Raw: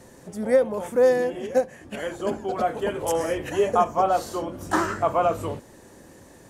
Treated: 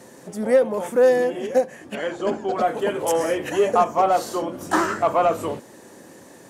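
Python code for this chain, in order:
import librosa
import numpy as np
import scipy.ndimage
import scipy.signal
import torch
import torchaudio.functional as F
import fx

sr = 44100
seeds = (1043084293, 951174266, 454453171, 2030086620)

p1 = scipy.signal.sosfilt(scipy.signal.butter(2, 170.0, 'highpass', fs=sr, output='sos'), x)
p2 = 10.0 ** (-20.5 / 20.0) * np.tanh(p1 / 10.0 ** (-20.5 / 20.0))
p3 = p1 + (p2 * librosa.db_to_amplitude(-4.0))
y = fx.lowpass(p3, sr, hz=fx.line((1.94, 5000.0), (2.6, 8500.0)), slope=12, at=(1.94, 2.6), fade=0.02)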